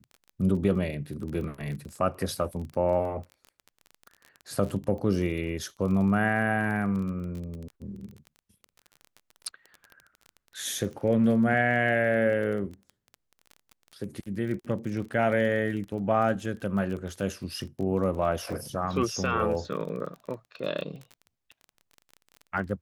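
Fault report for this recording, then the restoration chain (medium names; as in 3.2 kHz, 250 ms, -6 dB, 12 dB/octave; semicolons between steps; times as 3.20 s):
crackle 22 per s -35 dBFS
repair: de-click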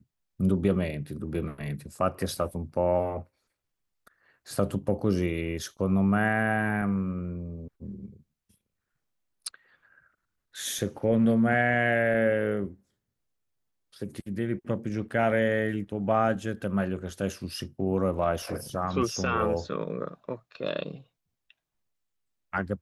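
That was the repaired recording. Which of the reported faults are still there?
nothing left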